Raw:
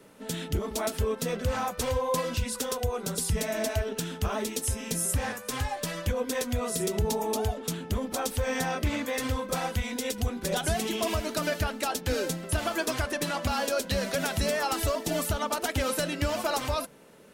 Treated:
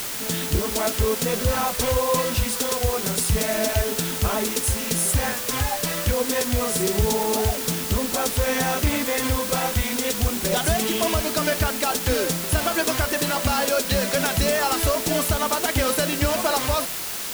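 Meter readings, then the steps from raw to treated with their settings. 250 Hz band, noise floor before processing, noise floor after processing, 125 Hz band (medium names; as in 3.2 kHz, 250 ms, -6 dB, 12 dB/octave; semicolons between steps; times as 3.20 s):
+6.0 dB, -43 dBFS, -29 dBFS, +6.0 dB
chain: word length cut 6-bit, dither triangular; trim +6 dB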